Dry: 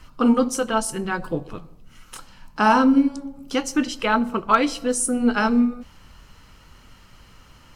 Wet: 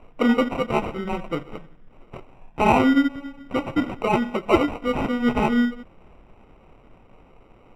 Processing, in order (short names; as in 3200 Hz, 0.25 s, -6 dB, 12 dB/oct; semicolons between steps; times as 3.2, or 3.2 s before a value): bell 76 Hz -6.5 dB 2.3 oct; sample-and-hold 26×; polynomial smoothing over 25 samples